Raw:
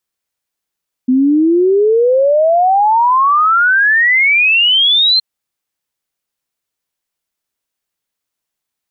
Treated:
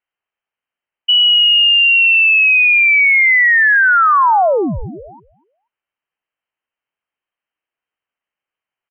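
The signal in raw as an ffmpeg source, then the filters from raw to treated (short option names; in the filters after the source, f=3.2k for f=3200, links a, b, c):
-f lavfi -i "aevalsrc='0.422*clip(min(t,4.12-t)/0.01,0,1)*sin(2*PI*250*4.12/log(4200/250)*(exp(log(4200/250)*t/4.12)-1))':d=4.12:s=44100"
-af "aecho=1:1:241|482:0.0891|0.0258,lowpass=f=2.7k:t=q:w=0.5098,lowpass=f=2.7k:t=q:w=0.6013,lowpass=f=2.7k:t=q:w=0.9,lowpass=f=2.7k:t=q:w=2.563,afreqshift=-3200"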